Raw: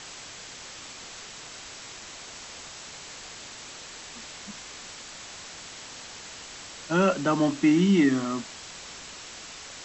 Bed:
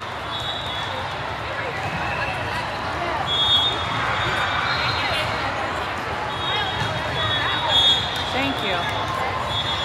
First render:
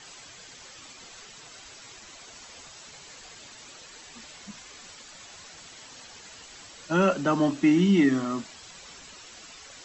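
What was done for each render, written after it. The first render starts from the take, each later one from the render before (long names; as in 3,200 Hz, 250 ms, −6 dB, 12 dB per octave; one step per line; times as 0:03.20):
broadband denoise 9 dB, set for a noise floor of −43 dBFS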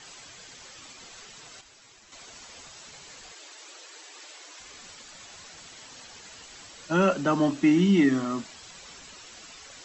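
0:01.61–0:02.12: clip gain −7.5 dB
0:03.32–0:04.60: linear-phase brick-wall high-pass 280 Hz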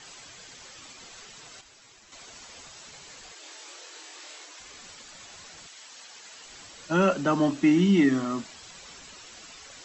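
0:03.41–0:04.45: flutter between parallel walls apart 4.3 metres, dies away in 0.3 s
0:05.66–0:06.44: high-pass filter 1,300 Hz → 440 Hz 6 dB per octave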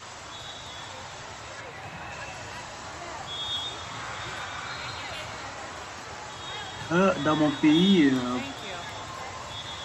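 mix in bed −14 dB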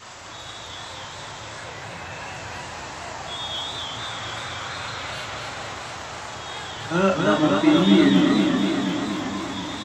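double-tracking delay 36 ms −4.5 dB
feedback echo with a swinging delay time 239 ms, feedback 73%, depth 136 cents, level −3.5 dB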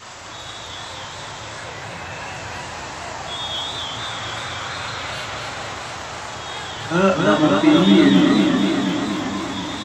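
level +3.5 dB
brickwall limiter −3 dBFS, peak gain reduction 2 dB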